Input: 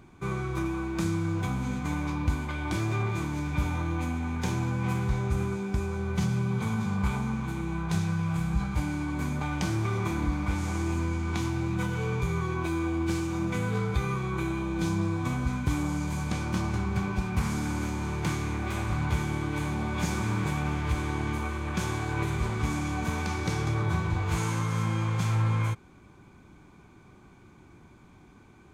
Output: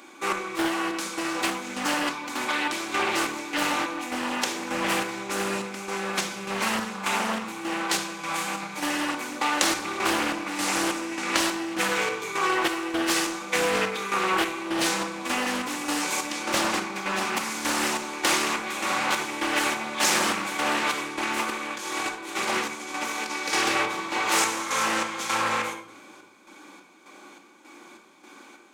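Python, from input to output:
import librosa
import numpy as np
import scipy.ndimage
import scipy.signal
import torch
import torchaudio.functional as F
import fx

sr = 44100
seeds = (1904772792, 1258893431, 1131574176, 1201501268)

y = scipy.signal.sosfilt(scipy.signal.butter(4, 320.0, 'highpass', fs=sr, output='sos'), x)
y = fx.high_shelf(y, sr, hz=2100.0, db=9.5)
y = fx.over_compress(y, sr, threshold_db=-35.0, ratio=-0.5, at=(21.02, 23.29), fade=0.02)
y = fx.chopper(y, sr, hz=1.7, depth_pct=60, duty_pct=55)
y = fx.room_shoebox(y, sr, seeds[0], volume_m3=2000.0, walls='furnished', distance_m=2.3)
y = fx.doppler_dist(y, sr, depth_ms=0.44)
y = F.gain(torch.from_numpy(y), 7.0).numpy()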